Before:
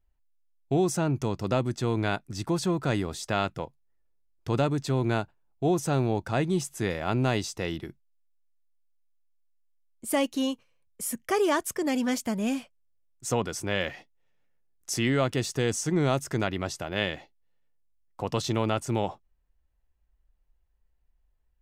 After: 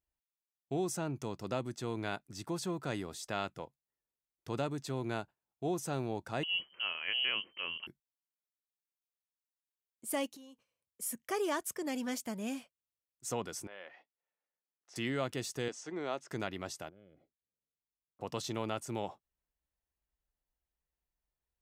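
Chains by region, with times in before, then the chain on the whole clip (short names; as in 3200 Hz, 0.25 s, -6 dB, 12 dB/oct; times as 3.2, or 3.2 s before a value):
6.43–7.87 upward compressor, threshold -30 dBFS + inverted band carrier 3100 Hz
10.28–11.02 compressor 12:1, threshold -40 dBFS + bell 2000 Hz -3 dB 1.4 oct
13.67–14.96 tilt -4 dB/oct + compressor 2:1, threshold -31 dBFS + BPF 780–3900 Hz
15.68–16.31 HPF 340 Hz + air absorption 130 m
16.89–18.21 running mean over 49 samples + compressor 5:1, threshold -46 dBFS
whole clip: HPF 160 Hz 6 dB/oct; high shelf 7900 Hz +5.5 dB; gain -9 dB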